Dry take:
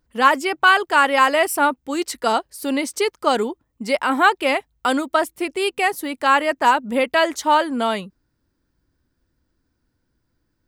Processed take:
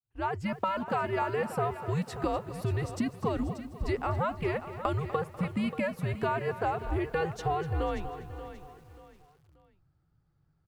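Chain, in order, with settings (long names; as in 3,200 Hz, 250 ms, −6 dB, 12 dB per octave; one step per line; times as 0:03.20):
fade in at the beginning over 0.92 s
low-pass filter 1,100 Hz 6 dB per octave
downward compressor 10 to 1, threshold −27 dBFS, peak gain reduction 15 dB
frequency shifter −170 Hz
repeating echo 583 ms, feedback 31%, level −12.5 dB
feedback echo at a low word length 246 ms, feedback 55%, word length 9 bits, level −14 dB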